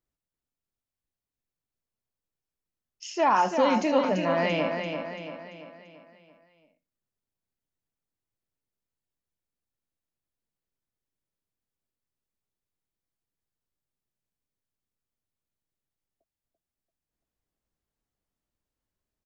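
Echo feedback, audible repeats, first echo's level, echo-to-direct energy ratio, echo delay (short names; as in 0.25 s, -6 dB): 49%, 5, -6.0 dB, -5.0 dB, 0.339 s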